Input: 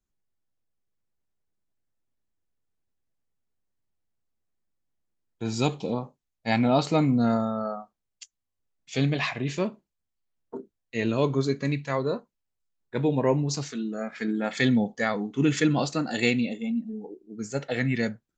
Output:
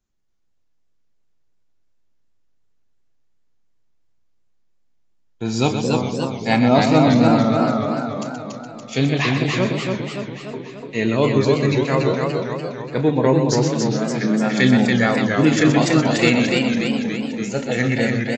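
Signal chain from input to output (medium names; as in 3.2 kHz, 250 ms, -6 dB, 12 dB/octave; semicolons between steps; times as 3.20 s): loudspeakers at several distances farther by 11 m -12 dB, 43 m -8 dB; resampled via 16 kHz; modulated delay 288 ms, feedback 58%, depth 134 cents, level -3.5 dB; trim +6 dB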